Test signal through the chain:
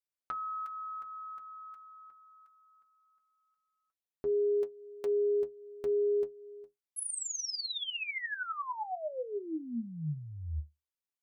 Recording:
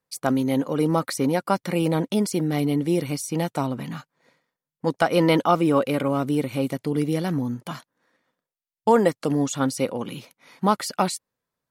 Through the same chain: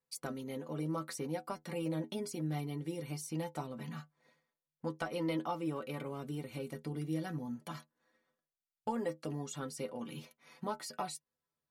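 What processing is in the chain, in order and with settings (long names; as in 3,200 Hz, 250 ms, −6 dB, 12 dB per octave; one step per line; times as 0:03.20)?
downward compressor 2 to 1, threshold −32 dBFS
stiff-string resonator 75 Hz, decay 0.2 s, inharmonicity 0.008
level −2 dB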